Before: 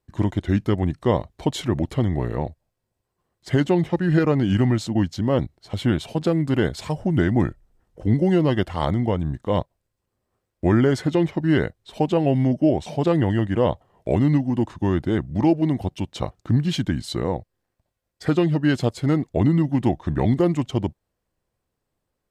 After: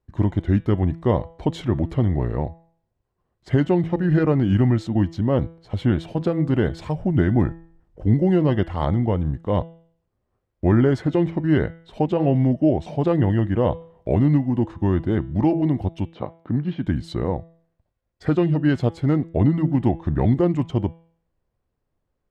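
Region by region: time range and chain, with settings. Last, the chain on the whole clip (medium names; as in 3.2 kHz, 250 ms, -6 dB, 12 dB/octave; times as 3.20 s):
16.14–16.86 s: high-pass 180 Hz + de-esser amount 85% + distance through air 280 m
whole clip: low-pass 1.9 kHz 6 dB/octave; bass shelf 77 Hz +7.5 dB; de-hum 165.5 Hz, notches 23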